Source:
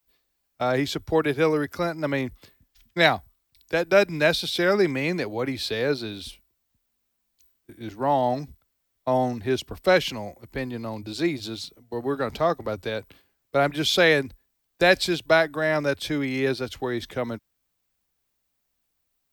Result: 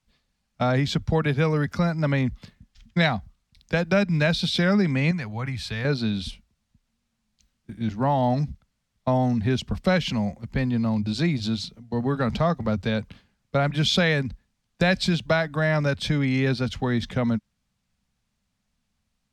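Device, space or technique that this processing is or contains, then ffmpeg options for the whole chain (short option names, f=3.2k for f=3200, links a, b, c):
jukebox: -filter_complex "[0:a]lowpass=7k,lowshelf=f=260:t=q:w=3:g=7,acompressor=threshold=-22dB:ratio=3,asettb=1/sr,asplit=3[a][b][c];[a]atrim=end=5.114[d];[b]atrim=start=5.11:end=5.85,asetpts=PTS-STARTPTS,afade=t=in:d=0.004:c=qsin,afade=t=out:st=0.736:d=0.004:c=qsin,equalizer=f=250:t=o:w=1:g=-11,equalizer=f=500:t=o:w=1:g=-10,equalizer=f=4k:t=o:w=1:g=-8[e];[c]atrim=start=5.846[f];[d][e]acrossfade=d=0.004:c1=hsin:c2=qsin[g];[g][f]acrossfade=d=0.004:c1=qsin:c2=hsin,volume=3dB"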